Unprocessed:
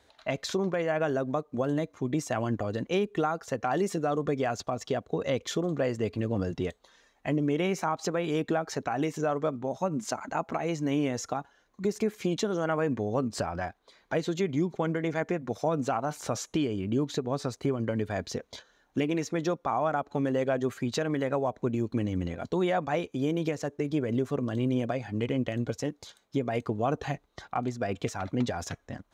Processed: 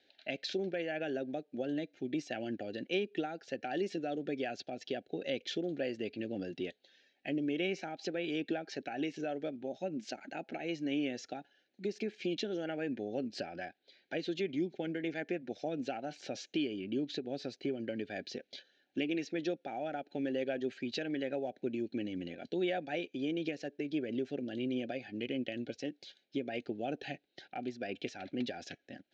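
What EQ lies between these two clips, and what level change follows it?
Butterworth band-stop 1100 Hz, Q 1.1; speaker cabinet 400–4200 Hz, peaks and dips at 460 Hz -10 dB, 650 Hz -9 dB, 930 Hz -8 dB, 1400 Hz -4 dB, 3500 Hz -4 dB; bell 2000 Hz -8.5 dB 0.28 oct; +2.0 dB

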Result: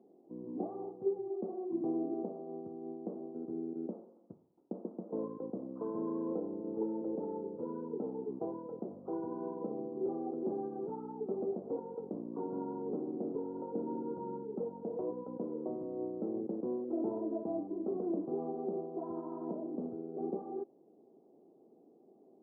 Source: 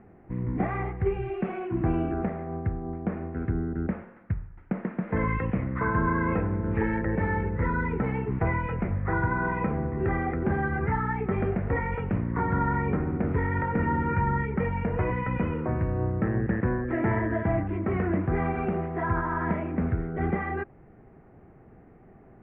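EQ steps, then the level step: Gaussian blur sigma 14 samples; HPF 290 Hz 24 dB/oct; air absorption 220 m; -1.5 dB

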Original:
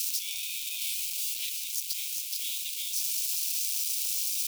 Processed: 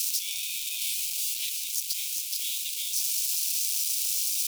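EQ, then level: bell 7900 Hz +3.5 dB 2.6 oct; 0.0 dB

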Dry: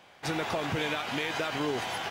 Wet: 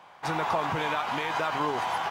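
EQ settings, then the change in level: bell 160 Hz +5.5 dB 0.22 oct; bell 990 Hz +14 dB 1.1 oct; -3.5 dB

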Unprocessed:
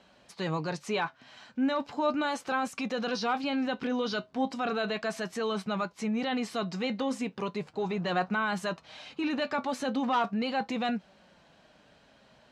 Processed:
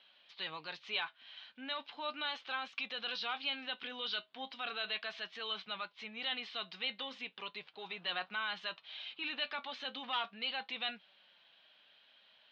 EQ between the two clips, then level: band-pass 3400 Hz, Q 3.4; air absorption 270 m; +11.0 dB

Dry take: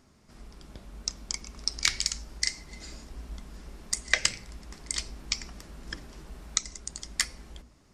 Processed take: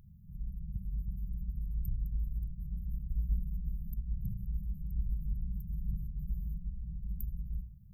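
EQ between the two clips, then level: brick-wall FIR band-stop 200–13000 Hz; +9.5 dB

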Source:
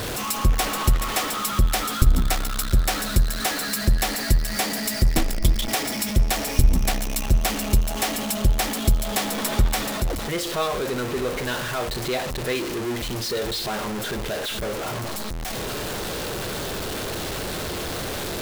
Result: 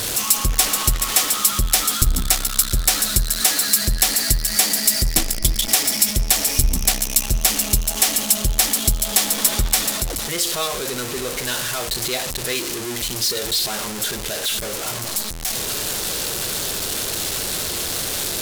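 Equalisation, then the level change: high shelf 3700 Hz +6 dB; bell 9300 Hz +9.5 dB 2.8 oct; -2.5 dB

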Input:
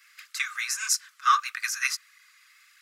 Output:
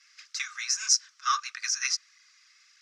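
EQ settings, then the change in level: synth low-pass 5700 Hz, resonance Q 4.6; -6.5 dB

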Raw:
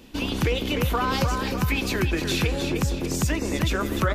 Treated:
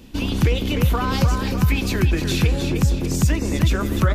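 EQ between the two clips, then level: tone controls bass +8 dB, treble +2 dB; 0.0 dB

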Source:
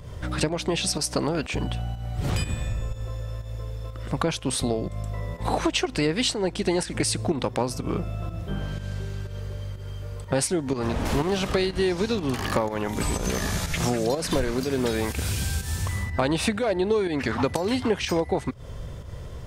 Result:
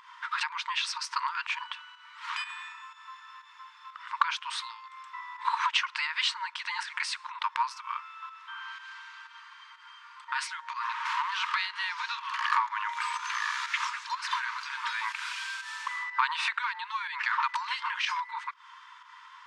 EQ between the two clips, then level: brick-wall FIR high-pass 890 Hz; tape spacing loss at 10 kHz 30 dB; +8.5 dB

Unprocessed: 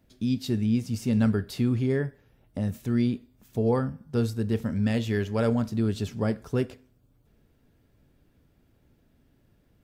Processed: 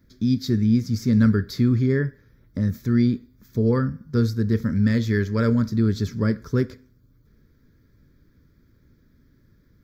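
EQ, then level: bell 3800 Hz -3 dB 0.23 oct; fixed phaser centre 2800 Hz, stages 6; +6.5 dB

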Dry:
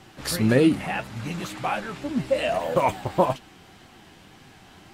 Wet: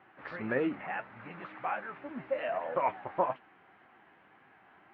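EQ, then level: HPF 1100 Hz 6 dB/oct; LPF 2000 Hz 24 dB/oct; air absorption 82 m; -2.5 dB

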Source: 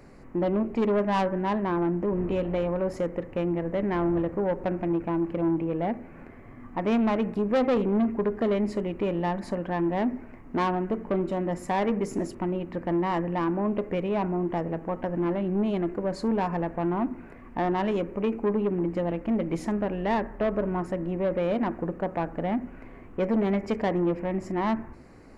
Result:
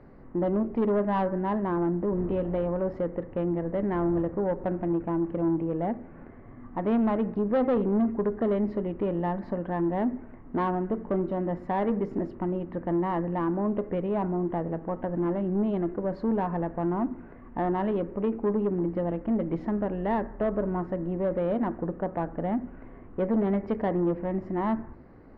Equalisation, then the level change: air absorption 320 m; bell 2400 Hz -7 dB 0.29 oct; high shelf 4400 Hz -9 dB; 0.0 dB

